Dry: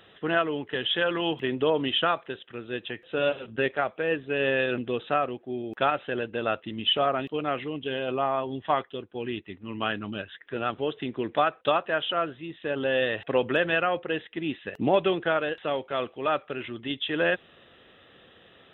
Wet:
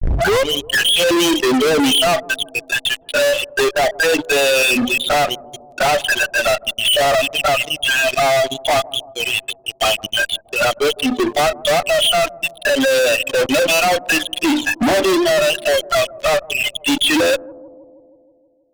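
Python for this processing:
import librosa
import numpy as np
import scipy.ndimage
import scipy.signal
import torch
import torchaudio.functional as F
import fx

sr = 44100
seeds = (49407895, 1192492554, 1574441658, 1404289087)

p1 = fx.tape_start_head(x, sr, length_s=0.5)
p2 = fx.noise_reduce_blind(p1, sr, reduce_db=23)
p3 = fx.peak_eq(p2, sr, hz=71.0, db=-11.0, octaves=0.25)
p4 = fx.hum_notches(p3, sr, base_hz=50, count=7)
p5 = fx.level_steps(p4, sr, step_db=18)
p6 = p4 + F.gain(torch.from_numpy(p5), 2.0).numpy()
p7 = fx.env_flanger(p6, sr, rest_ms=2.7, full_db=-23.5)
p8 = fx.spec_topn(p7, sr, count=16)
p9 = fx.fuzz(p8, sr, gain_db=45.0, gate_db=-51.0)
y = p9 + fx.echo_bbd(p9, sr, ms=159, stages=1024, feedback_pct=66, wet_db=-20.0, dry=0)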